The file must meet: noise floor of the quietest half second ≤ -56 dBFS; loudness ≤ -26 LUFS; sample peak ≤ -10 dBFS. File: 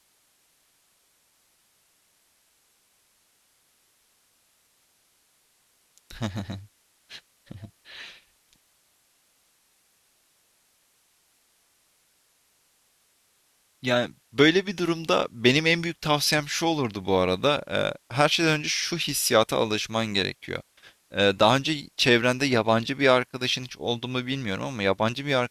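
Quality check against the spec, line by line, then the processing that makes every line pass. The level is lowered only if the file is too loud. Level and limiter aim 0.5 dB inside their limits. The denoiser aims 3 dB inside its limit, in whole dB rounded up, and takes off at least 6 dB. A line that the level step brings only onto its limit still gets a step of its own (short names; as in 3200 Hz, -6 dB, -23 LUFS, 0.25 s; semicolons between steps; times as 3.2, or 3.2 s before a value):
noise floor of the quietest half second -66 dBFS: OK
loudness -24.0 LUFS: fail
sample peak -5.0 dBFS: fail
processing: gain -2.5 dB; limiter -10.5 dBFS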